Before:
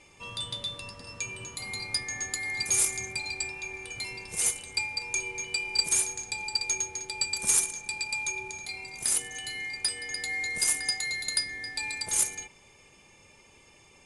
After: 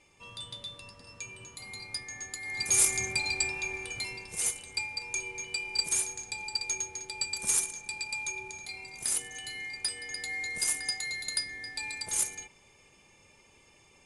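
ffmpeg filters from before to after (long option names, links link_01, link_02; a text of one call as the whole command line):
ffmpeg -i in.wav -af "volume=3.5dB,afade=type=in:start_time=2.41:duration=0.58:silence=0.298538,afade=type=out:start_time=3.61:duration=0.7:silence=0.446684" out.wav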